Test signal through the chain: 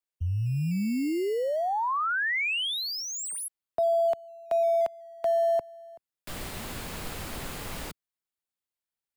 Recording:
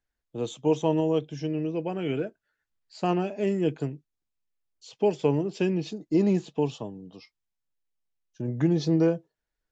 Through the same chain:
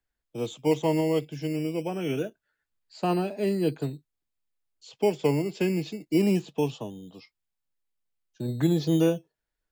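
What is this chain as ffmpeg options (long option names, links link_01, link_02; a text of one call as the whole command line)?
ffmpeg -i in.wav -filter_complex "[0:a]equalizer=frequency=5900:width=5.3:gain=-4.5,acrossover=split=130|350|2900[link_01][link_02][link_03][link_04];[link_02]acrusher=samples=14:mix=1:aa=0.000001:lfo=1:lforange=8.4:lforate=0.22[link_05];[link_04]asoftclip=type=tanh:threshold=-33.5dB[link_06];[link_01][link_05][link_03][link_06]amix=inputs=4:normalize=0" out.wav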